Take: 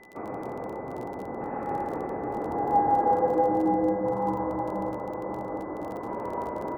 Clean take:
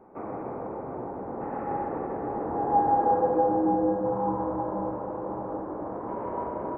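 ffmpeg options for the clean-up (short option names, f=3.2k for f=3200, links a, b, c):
-af "adeclick=t=4,bandreject=f=2k:w=30"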